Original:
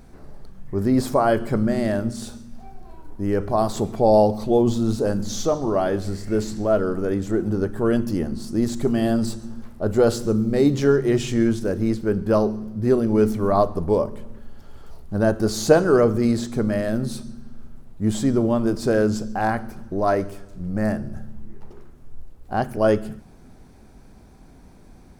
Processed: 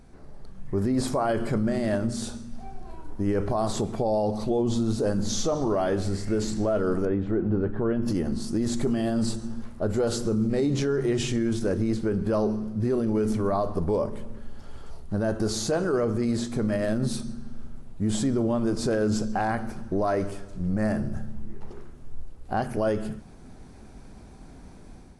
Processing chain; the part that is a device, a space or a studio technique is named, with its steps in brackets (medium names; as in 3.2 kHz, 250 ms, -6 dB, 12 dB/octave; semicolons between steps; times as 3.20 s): 7.05–8.08 s: distance through air 430 m; low-bitrate web radio (level rider gain up to 6.5 dB; peak limiter -12.5 dBFS, peak gain reduction 11 dB; trim -4.5 dB; AAC 48 kbps 24 kHz)